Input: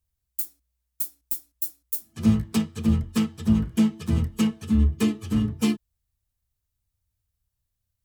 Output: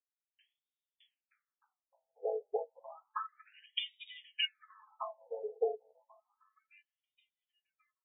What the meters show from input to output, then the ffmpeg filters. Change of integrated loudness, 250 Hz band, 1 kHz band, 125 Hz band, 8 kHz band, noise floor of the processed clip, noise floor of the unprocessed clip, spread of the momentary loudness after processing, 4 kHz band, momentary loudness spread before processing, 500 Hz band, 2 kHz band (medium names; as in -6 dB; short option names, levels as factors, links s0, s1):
-14.0 dB, under -40 dB, -2.0 dB, under -40 dB, under -40 dB, under -85 dBFS, -81 dBFS, 12 LU, -0.5 dB, 8 LU, -0.5 dB, -6.0 dB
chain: -filter_complex "[0:a]afftdn=nr=18:nf=-33,aeval=exprs='0.398*(cos(1*acos(clip(val(0)/0.398,-1,1)))-cos(1*PI/2))+0.0355*(cos(3*acos(clip(val(0)/0.398,-1,1)))-cos(3*PI/2))+0.0112*(cos(5*acos(clip(val(0)/0.398,-1,1)))-cos(5*PI/2))':c=same,acrossover=split=120[s0][s1];[s1]alimiter=limit=0.112:level=0:latency=1:release=13[s2];[s0][s2]amix=inputs=2:normalize=0,highshelf=f=3200:t=q:w=1.5:g=12.5,asplit=2[s3][s4];[s4]adelay=1087,lowpass=f=1400:p=1,volume=0.0891,asplit=2[s5][s6];[s6]adelay=1087,lowpass=f=1400:p=1,volume=0.45,asplit=2[s7][s8];[s8]adelay=1087,lowpass=f=1400:p=1,volume=0.45[s9];[s3][s5][s7][s9]amix=inputs=4:normalize=0,afftfilt=real='re*between(b*sr/1024,580*pow(2700/580,0.5+0.5*sin(2*PI*0.31*pts/sr))/1.41,580*pow(2700/580,0.5+0.5*sin(2*PI*0.31*pts/sr))*1.41)':imag='im*between(b*sr/1024,580*pow(2700/580,0.5+0.5*sin(2*PI*0.31*pts/sr))/1.41,580*pow(2700/580,0.5+0.5*sin(2*PI*0.31*pts/sr))*1.41)':win_size=1024:overlap=0.75,volume=3.35"